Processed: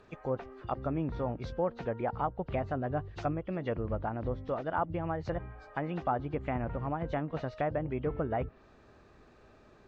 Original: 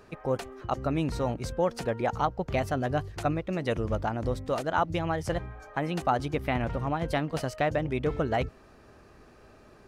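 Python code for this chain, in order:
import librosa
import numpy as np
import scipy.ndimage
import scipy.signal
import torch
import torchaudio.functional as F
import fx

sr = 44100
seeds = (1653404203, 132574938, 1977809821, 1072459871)

y = fx.freq_compress(x, sr, knee_hz=2700.0, ratio=1.5)
y = fx.env_lowpass_down(y, sr, base_hz=1500.0, full_db=-24.5)
y = y * librosa.db_to_amplitude(-4.5)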